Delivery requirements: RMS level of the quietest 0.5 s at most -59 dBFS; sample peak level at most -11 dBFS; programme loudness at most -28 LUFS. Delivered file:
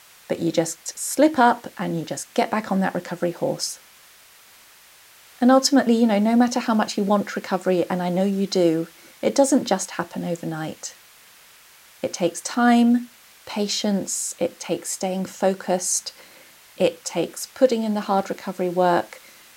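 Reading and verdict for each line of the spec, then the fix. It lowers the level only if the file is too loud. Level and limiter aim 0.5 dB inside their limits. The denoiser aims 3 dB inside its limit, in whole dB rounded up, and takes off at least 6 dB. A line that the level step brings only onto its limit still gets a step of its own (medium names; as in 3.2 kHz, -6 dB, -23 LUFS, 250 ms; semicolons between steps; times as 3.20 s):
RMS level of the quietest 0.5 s -50 dBFS: fail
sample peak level -3.0 dBFS: fail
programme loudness -22.0 LUFS: fail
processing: noise reduction 6 dB, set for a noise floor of -50 dBFS; trim -6.5 dB; peak limiter -11.5 dBFS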